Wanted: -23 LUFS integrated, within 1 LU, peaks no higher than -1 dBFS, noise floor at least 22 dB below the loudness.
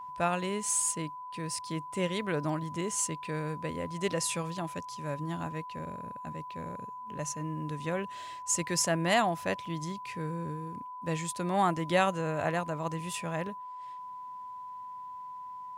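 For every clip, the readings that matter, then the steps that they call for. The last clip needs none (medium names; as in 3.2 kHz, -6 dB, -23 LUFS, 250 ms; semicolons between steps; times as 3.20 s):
steady tone 1 kHz; tone level -40 dBFS; loudness -33.0 LUFS; peak level -12.5 dBFS; loudness target -23.0 LUFS
-> band-stop 1 kHz, Q 30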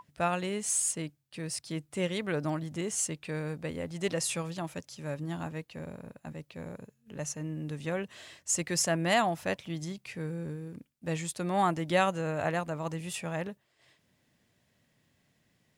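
steady tone not found; loudness -32.5 LUFS; peak level -13.0 dBFS; loudness target -23.0 LUFS
-> trim +9.5 dB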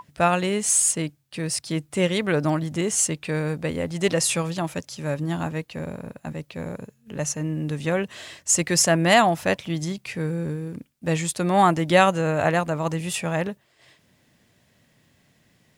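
loudness -23.5 LUFS; peak level -3.5 dBFS; noise floor -63 dBFS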